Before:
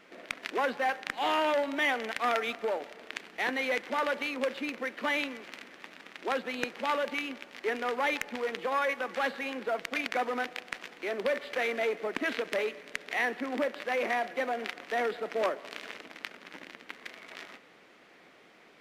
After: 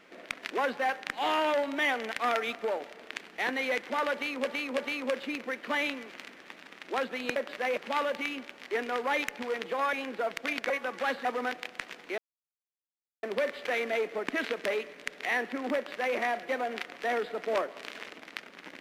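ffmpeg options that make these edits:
-filter_complex "[0:a]asplit=9[a][b][c][d][e][f][g][h][i];[a]atrim=end=4.452[j];[b]atrim=start=4.118:end=4.452[k];[c]atrim=start=4.118:end=6.702[l];[d]atrim=start=13.628:end=14.042[m];[e]atrim=start=6.698:end=8.862[n];[f]atrim=start=9.408:end=10.182[o];[g]atrim=start=8.858:end=9.412[p];[h]atrim=start=10.178:end=11.11,asetpts=PTS-STARTPTS,afade=t=out:st=0.928:d=0.004:c=hsin,apad=pad_dur=1.05[q];[i]atrim=start=11.11,asetpts=PTS-STARTPTS,afade=t=in:d=0.004:c=hsin[r];[j][k]acrossfade=d=0.004:c1=hsin:c2=hsin[s];[s][l]acrossfade=d=0.004:c1=hsin:c2=hsin[t];[t][m]acrossfade=d=0.004:c1=hsin:c2=hsin[u];[u][n]acrossfade=d=0.004:c1=hsin:c2=hsin[v];[v][o]acrossfade=d=0.004:c1=hsin:c2=hsin[w];[w][p]acrossfade=d=0.004:c1=hsin:c2=hsin[x];[q][r]concat=n=2:v=0:a=1[y];[x][y]acrossfade=d=0.004:c1=hsin:c2=hsin"

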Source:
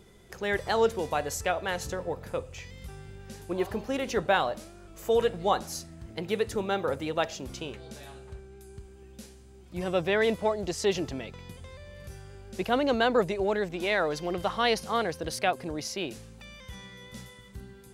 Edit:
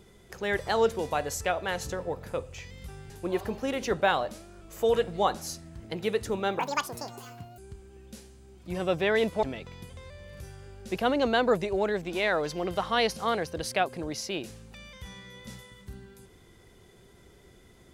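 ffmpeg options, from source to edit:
-filter_complex "[0:a]asplit=5[a][b][c][d][e];[a]atrim=end=3.102[f];[b]atrim=start=3.358:end=6.854[g];[c]atrim=start=6.85:end=8.64,asetpts=PTS-STARTPTS,asetrate=79821,aresample=44100[h];[d]atrim=start=8.636:end=10.492[i];[e]atrim=start=11.098[j];[f][g]acrossfade=d=0.004:c1=hsin:c2=hsin[k];[k][h]acrossfade=d=0.004:c1=hsin:c2=hsin[l];[l][i]acrossfade=d=0.004:c1=hsin:c2=hsin[m];[m][j]acrossfade=d=0.004:c1=hsin:c2=hsin"

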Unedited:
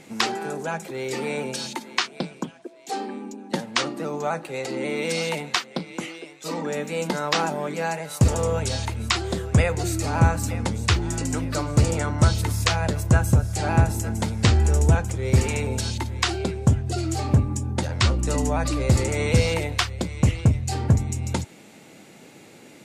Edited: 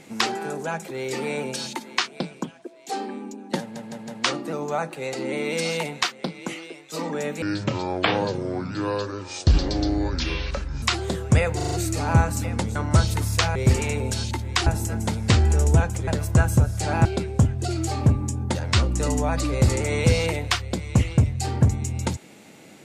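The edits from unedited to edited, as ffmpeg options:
-filter_complex "[0:a]asplit=15[a][b][c][d][e][f][g][h][i][j][k][l][m][n][o];[a]atrim=end=3.762[p];[b]atrim=start=3.598:end=3.762[q];[c]atrim=start=3.598:end=3.762[r];[d]atrim=start=3.598:end=6.944[s];[e]atrim=start=6.94:end=9.05,asetpts=PTS-STARTPTS,asetrate=27342,aresample=44100,atrim=end_sample=150082,asetpts=PTS-STARTPTS[t];[f]atrim=start=9.046:end=9.822[u];[g]atrim=start=9.778:end=9.822[v];[h]atrim=start=9.778:end=9.822[w];[i]atrim=start=9.778:end=9.822[x];[j]atrim=start=9.778:end=10.822[y];[k]atrim=start=12.028:end=12.832[z];[l]atrim=start=15.218:end=16.332[aa];[m]atrim=start=13.808:end=15.222[ab];[n]atrim=start=12.828:end=13.812[ac];[o]atrim=start=16.328[ad];[p][q]acrossfade=d=0.004:c1=hsin:c2=hsin[ae];[ae][r]acrossfade=d=0.004:c1=hsin:c2=hsin[af];[af][s]acrossfade=d=0.004:c1=hsin:c2=hsin[ag];[ag][t]acrossfade=d=0.004:c1=hsin:c2=hsin[ah];[ah][u]acrossfade=d=0.004:c1=hsin:c2=hsin[ai];[ai][v]acrossfade=d=0.004:c1=hsin:c2=hsin[aj];[aj][w]acrossfade=d=0.004:c1=hsin:c2=hsin[ak];[ak][x]acrossfade=d=0.004:c1=hsin:c2=hsin[al];[al][y]acrossfade=d=0.004:c1=hsin:c2=hsin[am];[am][z]acrossfade=d=0.004:c1=hsin:c2=hsin[an];[an][aa]acrossfade=d=0.004:c1=hsin:c2=hsin[ao];[ao][ab]acrossfade=d=0.004:c1=hsin:c2=hsin[ap];[ap][ac]acrossfade=d=0.004:c1=hsin:c2=hsin[aq];[aq][ad]acrossfade=d=0.004:c1=hsin:c2=hsin"

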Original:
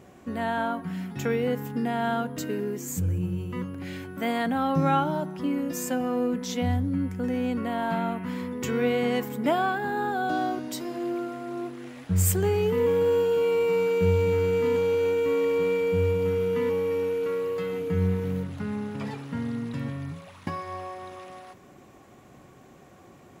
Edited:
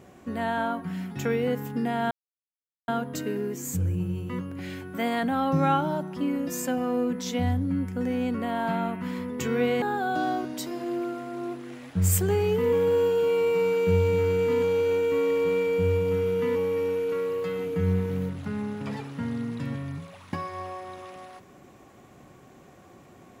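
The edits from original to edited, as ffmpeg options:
-filter_complex "[0:a]asplit=3[a][b][c];[a]atrim=end=2.11,asetpts=PTS-STARTPTS,afade=t=out:st=2.106:d=0.004:c=hsin,apad=pad_dur=0.77[d];[b]atrim=start=2.11:end=9.052,asetpts=PTS-STARTPTS,afade=t=in:d=0.004:c=hsin[e];[c]atrim=start=9.958[f];[d][e]concat=n=2:v=0:a=1[g];[g][f]acrossfade=d=0.004:c1=hsin:c2=hsin"

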